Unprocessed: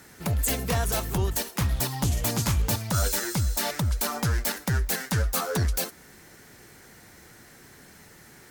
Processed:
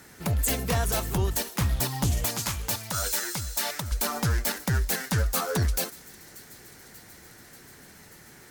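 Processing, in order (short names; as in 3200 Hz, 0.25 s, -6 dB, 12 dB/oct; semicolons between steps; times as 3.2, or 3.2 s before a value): 2.25–3.92 low shelf 500 Hz -10.5 dB; on a send: thin delay 0.586 s, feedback 72%, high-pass 3600 Hz, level -19 dB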